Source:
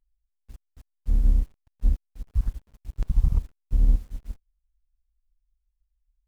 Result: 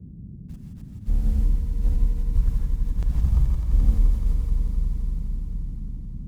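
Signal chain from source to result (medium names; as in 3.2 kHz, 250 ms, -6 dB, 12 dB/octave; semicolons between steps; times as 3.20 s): on a send: echo with a slow build-up 86 ms, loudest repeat 5, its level -11.5 dB; on the sum: gated-style reverb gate 190 ms rising, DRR 1.5 dB; band noise 35–200 Hz -39 dBFS; modulated delay 259 ms, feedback 76%, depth 71 cents, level -14 dB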